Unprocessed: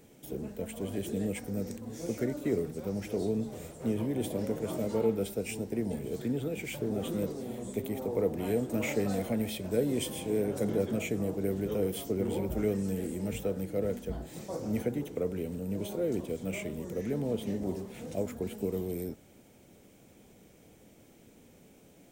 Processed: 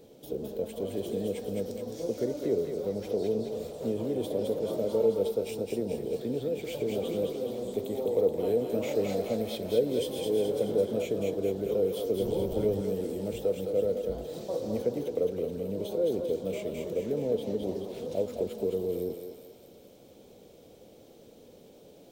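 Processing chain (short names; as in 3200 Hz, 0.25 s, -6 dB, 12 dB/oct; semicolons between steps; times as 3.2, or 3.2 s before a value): 12.21–12.81 octaver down 1 oct, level -1 dB; graphic EQ 500/2000/4000/8000 Hz +11/-8/+9/-5 dB; in parallel at -1 dB: compressor, threshold -32 dBFS, peak gain reduction 17 dB; on the sum: thinning echo 0.213 s, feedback 56%, high-pass 640 Hz, level -3 dB; gain -7 dB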